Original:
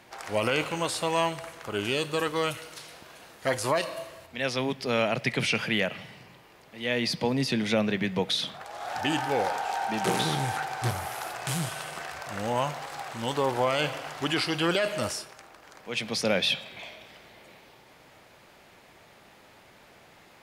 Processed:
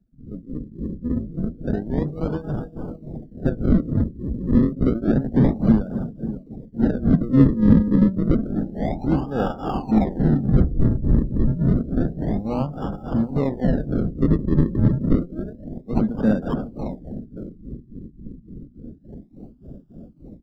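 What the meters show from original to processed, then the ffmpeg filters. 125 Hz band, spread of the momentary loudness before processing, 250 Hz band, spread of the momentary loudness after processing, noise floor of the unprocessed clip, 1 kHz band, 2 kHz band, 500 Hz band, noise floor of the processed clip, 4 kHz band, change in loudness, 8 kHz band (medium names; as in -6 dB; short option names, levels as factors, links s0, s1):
+14.5 dB, 13 LU, +14.0 dB, 18 LU, -55 dBFS, -4.5 dB, -12.0 dB, +1.0 dB, -48 dBFS, under -20 dB, +7.0 dB, under -25 dB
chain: -filter_complex "[0:a]alimiter=limit=0.0668:level=0:latency=1:release=60,highpass=62,bandreject=f=60:t=h:w=6,bandreject=f=120:t=h:w=6,bandreject=f=180:t=h:w=6,bandreject=f=240:t=h:w=6,bandreject=f=300:t=h:w=6,asplit=2[s0][s1];[s1]adelay=550,lowpass=f=1600:p=1,volume=0.266,asplit=2[s2][s3];[s3]adelay=550,lowpass=f=1600:p=1,volume=0.37,asplit=2[s4][s5];[s5]adelay=550,lowpass=f=1600:p=1,volume=0.37,asplit=2[s6][s7];[s7]adelay=550,lowpass=f=1600:p=1,volume=0.37[s8];[s2][s4][s6][s8]amix=inputs=4:normalize=0[s9];[s0][s9]amix=inputs=2:normalize=0,dynaudnorm=f=130:g=21:m=6.31,acrusher=samples=41:mix=1:aa=0.000001:lfo=1:lforange=41:lforate=0.29,bass=f=250:g=13,treble=f=4000:g=-2,tremolo=f=3.5:d=0.82,equalizer=f=100:t=o:w=0.67:g=-7,equalizer=f=250:t=o:w=0.67:g=7,equalizer=f=1000:t=o:w=0.67:g=-7,equalizer=f=2500:t=o:w=0.67:g=-10,equalizer=f=10000:t=o:w=0.67:g=-5,afftdn=nr=22:nf=-34,acrossover=split=3000[s10][s11];[s11]acompressor=threshold=0.00282:ratio=4:attack=1:release=60[s12];[s10][s12]amix=inputs=2:normalize=0,bandreject=f=6400:w=10,volume=0.531"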